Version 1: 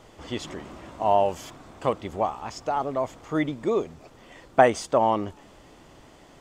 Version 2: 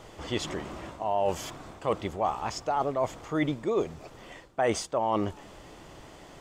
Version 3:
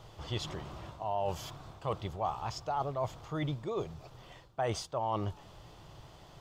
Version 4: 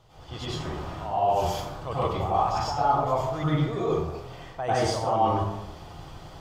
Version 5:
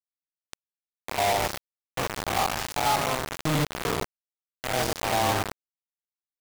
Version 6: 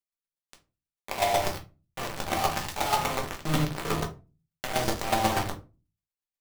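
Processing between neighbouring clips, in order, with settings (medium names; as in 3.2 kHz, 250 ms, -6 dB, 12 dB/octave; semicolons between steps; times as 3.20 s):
peaking EQ 250 Hz -4.5 dB 0.29 oct; reverse; compression 10:1, threshold -26 dBFS, peak gain reduction 15.5 dB; reverse; trim +3 dB
graphic EQ 125/250/500/2000/4000/8000 Hz +7/-10/-4/-8/+3/-8 dB; trim -2.5 dB
level rider gain up to 6.5 dB; plate-style reverb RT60 0.93 s, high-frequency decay 0.5×, pre-delay 85 ms, DRR -9.5 dB; trim -6.5 dB
spectrogram pixelated in time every 100 ms; bit crusher 4-bit; trim -1.5 dB
square tremolo 8.2 Hz, depth 65%, duty 15%; simulated room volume 120 m³, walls furnished, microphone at 1.2 m; trim +1.5 dB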